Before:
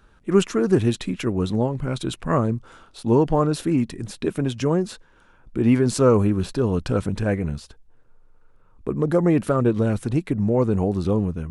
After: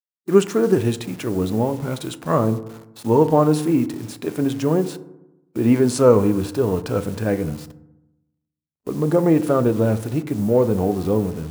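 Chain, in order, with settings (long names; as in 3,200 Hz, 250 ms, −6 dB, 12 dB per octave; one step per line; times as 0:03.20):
hold until the input has moved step −40.5 dBFS
high-pass filter 78 Hz
noise gate −48 dBFS, range −39 dB
parametric band 640 Hz +8 dB 2.4 octaves
harmonic and percussive parts rebalanced percussive −7 dB
high-shelf EQ 3,500 Hz +10 dB
feedback delay network reverb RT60 0.92 s, low-frequency decay 1.25×, high-frequency decay 0.35×, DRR 11.5 dB
level −1 dB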